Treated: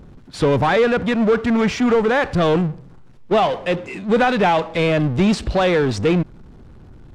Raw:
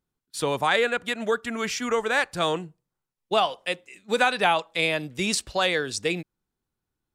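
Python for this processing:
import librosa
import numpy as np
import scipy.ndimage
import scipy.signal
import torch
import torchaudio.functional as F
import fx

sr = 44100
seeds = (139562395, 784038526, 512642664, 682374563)

y = fx.low_shelf(x, sr, hz=420.0, db=11.5)
y = fx.power_curve(y, sr, exponent=0.5)
y = fx.spacing_loss(y, sr, db_at_10k=21)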